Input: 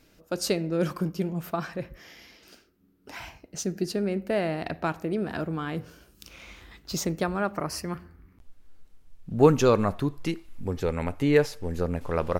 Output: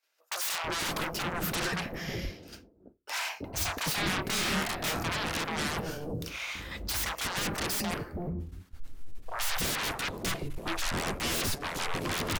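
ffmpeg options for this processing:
-filter_complex "[0:a]agate=range=0.0224:threshold=0.00631:ratio=3:detection=peak,equalizer=f=93:w=6.9:g=9,aeval=exprs='(tanh(3.55*val(0)+0.6)-tanh(0.6))/3.55':c=same,aeval=exprs='0.0376*sin(PI/2*4.47*val(0)/0.0376)':c=same,asettb=1/sr,asplit=3[s0][s1][s2];[s0]atrim=end=3.584[s3];[s1]atrim=start=3.58:end=5.03,asetpts=PTS-STARTPTS,afade=t=in:d=0.004:c=qsin,afade=t=out:st=1.446:d=0.004:c=qsin,asplit=2[s4][s5];[s5]adelay=27,volume=0.668[s6];[s4][s6]amix=inputs=2:normalize=0,atrim=end_sample=63945[s7];[s2]atrim=start=5.026[s8];[s3][s7]acrossfade=d=0.004:c1=hsin:c2=qsin[s9];[s9][s8]acrossfade=d=0.004:c1=qsin:c2=hsin,acrossover=split=630[s10][s11];[s10]adelay=330[s12];[s12][s11]amix=inputs=2:normalize=0"

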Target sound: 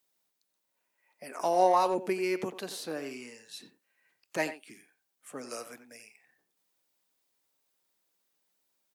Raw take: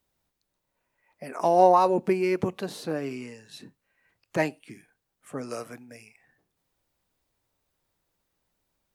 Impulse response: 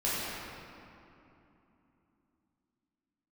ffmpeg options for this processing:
-filter_complex "[0:a]highpass=220,highshelf=f=2500:g=9.5,asplit=2[s0][s1];[s1]adelay=90,highpass=300,lowpass=3400,asoftclip=type=hard:threshold=0.178,volume=0.282[s2];[s0][s2]amix=inputs=2:normalize=0,volume=0.473"

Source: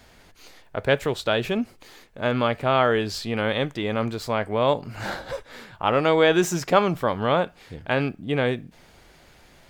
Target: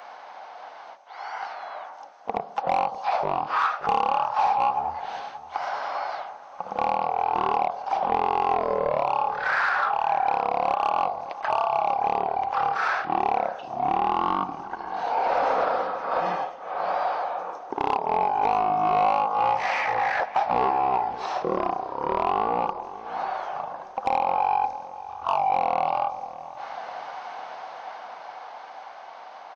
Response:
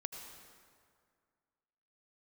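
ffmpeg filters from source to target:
-filter_complex "[0:a]asetrate=14465,aresample=44100,dynaudnorm=f=270:g=17:m=2.51,highpass=f=790:t=q:w=4.9,acrossover=split=1600|3600[s0][s1][s2];[s0]acompressor=threshold=0.0447:ratio=4[s3];[s1]acompressor=threshold=0.00251:ratio=4[s4];[s2]acompressor=threshold=0.00141:ratio=4[s5];[s3][s4][s5]amix=inputs=3:normalize=0,asoftclip=type=tanh:threshold=0.0708,asplit=2[s6][s7];[s7]adelay=578,lowpass=f=1300:p=1,volume=0.2,asplit=2[s8][s9];[s9]adelay=578,lowpass=f=1300:p=1,volume=0.5,asplit=2[s10][s11];[s11]adelay=578,lowpass=f=1300:p=1,volume=0.5,asplit=2[s12][s13];[s13]adelay=578,lowpass=f=1300:p=1,volume=0.5,asplit=2[s14][s15];[s15]adelay=578,lowpass=f=1300:p=1,volume=0.5[s16];[s8][s10][s12][s14][s16]amix=inputs=5:normalize=0[s17];[s6][s17]amix=inputs=2:normalize=0,asplit=2[s18][s19];[s19]asetrate=55563,aresample=44100,atempo=0.793701,volume=0.158[s20];[s18][s20]amix=inputs=2:normalize=0,volume=2.66"

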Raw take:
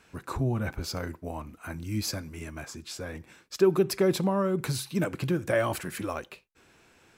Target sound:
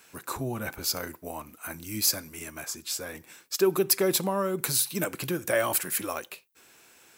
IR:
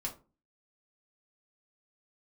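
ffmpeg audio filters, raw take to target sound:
-af "aemphasis=mode=production:type=bsi,volume=1.12"

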